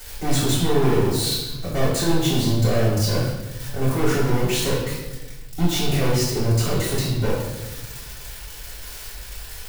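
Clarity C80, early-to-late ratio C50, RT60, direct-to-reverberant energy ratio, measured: 4.5 dB, 1.5 dB, 1.0 s, −10.0 dB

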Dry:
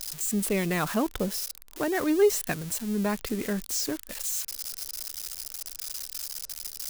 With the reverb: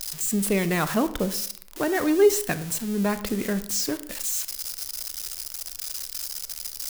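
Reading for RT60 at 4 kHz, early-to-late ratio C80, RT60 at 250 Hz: 0.40 s, 17.5 dB, 0.65 s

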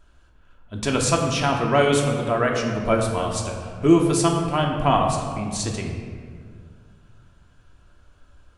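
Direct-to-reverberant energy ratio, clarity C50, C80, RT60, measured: 0.0 dB, 3.5 dB, 5.0 dB, 1.9 s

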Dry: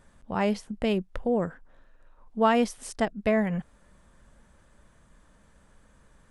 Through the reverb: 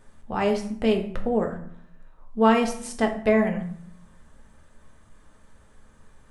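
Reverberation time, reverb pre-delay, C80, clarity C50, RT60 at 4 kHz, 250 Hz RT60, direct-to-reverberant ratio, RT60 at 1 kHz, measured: 0.60 s, 3 ms, 13.0 dB, 9.5 dB, 0.45 s, 0.85 s, 3.0 dB, 0.60 s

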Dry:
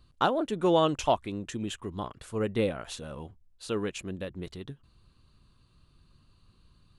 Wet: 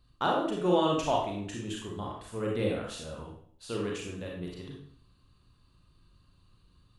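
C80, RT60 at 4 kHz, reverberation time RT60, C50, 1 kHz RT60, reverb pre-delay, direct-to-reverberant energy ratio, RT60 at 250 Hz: 6.0 dB, 0.50 s, 0.55 s, 1.5 dB, 0.55 s, 31 ms, −2.5 dB, 0.60 s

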